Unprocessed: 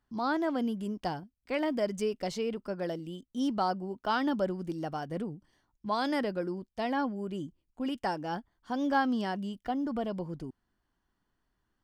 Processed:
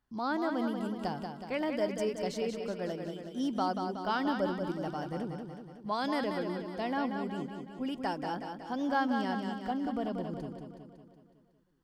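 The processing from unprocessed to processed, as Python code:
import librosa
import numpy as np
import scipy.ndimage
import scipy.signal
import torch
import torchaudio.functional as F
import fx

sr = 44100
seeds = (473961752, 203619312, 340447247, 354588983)

y = fx.echo_feedback(x, sr, ms=185, feedback_pct=58, wet_db=-6)
y = y * librosa.db_to_amplitude(-2.5)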